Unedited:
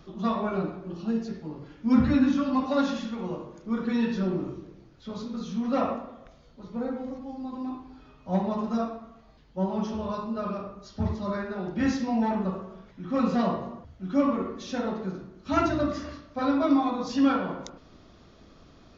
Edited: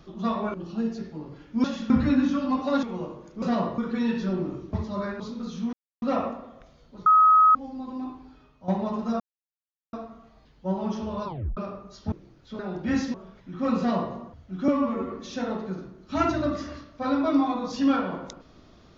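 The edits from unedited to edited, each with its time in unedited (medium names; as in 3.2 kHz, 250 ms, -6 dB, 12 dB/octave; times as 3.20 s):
0.54–0.84 s: delete
2.87–3.13 s: move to 1.94 s
4.67–5.14 s: swap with 11.04–11.51 s
5.67 s: insert silence 0.29 s
6.71–7.20 s: bleep 1.27 kHz -13 dBFS
7.85–8.33 s: fade out linear, to -10 dB
8.85 s: insert silence 0.73 s
10.18 s: tape stop 0.31 s
12.06–12.65 s: delete
13.29–13.65 s: copy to 3.72 s
14.19–14.48 s: stretch 1.5×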